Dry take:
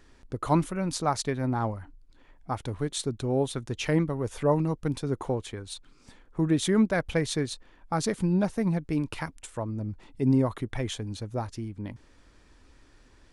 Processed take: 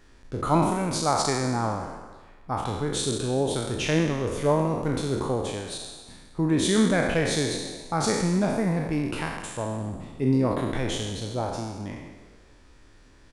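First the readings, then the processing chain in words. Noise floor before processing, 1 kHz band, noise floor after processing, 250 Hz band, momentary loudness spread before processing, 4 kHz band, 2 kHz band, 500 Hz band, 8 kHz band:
-58 dBFS, +4.5 dB, -53 dBFS, +2.0 dB, 13 LU, +6.0 dB, +5.0 dB, +3.5 dB, +6.0 dB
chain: spectral trails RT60 1.16 s; frequency-shifting echo 0.129 s, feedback 57%, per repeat +66 Hz, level -16 dB

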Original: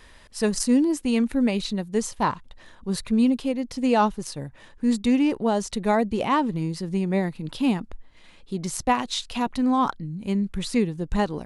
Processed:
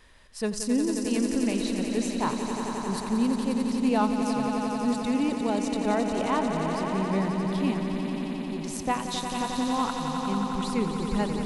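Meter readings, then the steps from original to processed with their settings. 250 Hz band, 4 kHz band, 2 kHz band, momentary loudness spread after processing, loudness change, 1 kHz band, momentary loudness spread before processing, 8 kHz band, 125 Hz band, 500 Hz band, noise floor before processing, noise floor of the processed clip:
-2.5 dB, -2.5 dB, -2.5 dB, 5 LU, -3.0 dB, -2.5 dB, 10 LU, -2.5 dB, -2.5 dB, -2.5 dB, -50 dBFS, -34 dBFS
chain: swelling echo 89 ms, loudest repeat 5, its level -8.5 dB; gain -6 dB

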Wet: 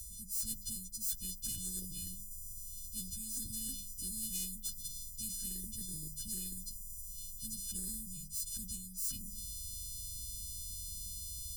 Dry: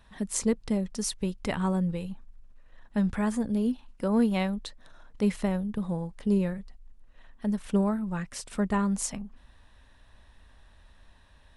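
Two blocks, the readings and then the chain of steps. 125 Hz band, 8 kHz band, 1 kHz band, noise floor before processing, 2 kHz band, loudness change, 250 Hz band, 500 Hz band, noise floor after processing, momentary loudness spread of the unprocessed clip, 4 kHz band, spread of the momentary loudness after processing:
-17.0 dB, +1.5 dB, under -40 dB, -57 dBFS, under -25 dB, -10.5 dB, -24.0 dB, -36.0 dB, -48 dBFS, 9 LU, -2.0 dB, 6 LU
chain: frequency quantiser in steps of 3 st; notches 50/100/150/200 Hz; in parallel at -5.5 dB: soft clip -20.5 dBFS, distortion -12 dB; on the sum: inverse Chebyshev band-stop 430–2000 Hz, stop band 80 dB; low shelf 400 Hz -3.5 dB; reverse; compressor 5:1, threshold -51 dBFS, peak gain reduction 28.5 dB; reverse; spectral compressor 4:1; gain +16 dB

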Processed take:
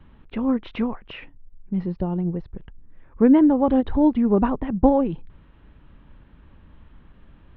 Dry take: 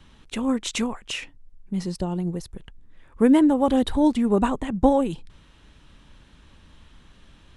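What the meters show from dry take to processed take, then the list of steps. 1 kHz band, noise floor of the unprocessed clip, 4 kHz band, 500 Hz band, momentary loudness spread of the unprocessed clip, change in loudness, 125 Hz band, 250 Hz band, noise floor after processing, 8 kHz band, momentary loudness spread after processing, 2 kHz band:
-0.5 dB, -54 dBFS, under -10 dB, +1.0 dB, 15 LU, +2.0 dB, +2.5 dB, +2.0 dB, -52 dBFS, n/a, 18 LU, -4.5 dB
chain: Gaussian blur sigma 3.5 samples; low shelf 390 Hz +3 dB; ending taper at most 500 dB/s

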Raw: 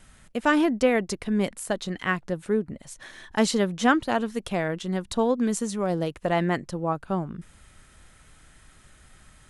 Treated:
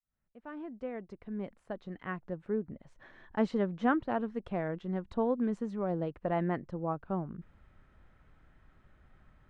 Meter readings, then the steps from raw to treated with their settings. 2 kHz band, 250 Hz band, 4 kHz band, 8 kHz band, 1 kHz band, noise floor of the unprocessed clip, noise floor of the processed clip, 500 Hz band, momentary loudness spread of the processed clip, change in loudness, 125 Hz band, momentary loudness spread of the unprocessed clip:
-14.0 dB, -8.5 dB, -22.0 dB, under -30 dB, -9.0 dB, -55 dBFS, -71 dBFS, -8.5 dB, 14 LU, -9.0 dB, -7.0 dB, 10 LU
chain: opening faded in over 3.12 s; Bessel low-pass 1300 Hz, order 2; gain -6.5 dB

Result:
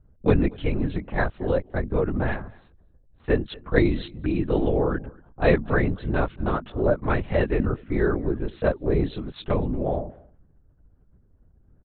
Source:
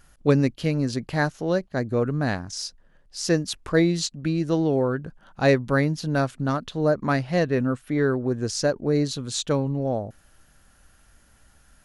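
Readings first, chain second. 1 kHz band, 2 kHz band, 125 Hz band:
-1.0 dB, -1.0 dB, -1.5 dB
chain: low-pass opened by the level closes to 330 Hz, open at -19 dBFS; LPC vocoder at 8 kHz whisper; outdoor echo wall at 40 m, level -24 dB

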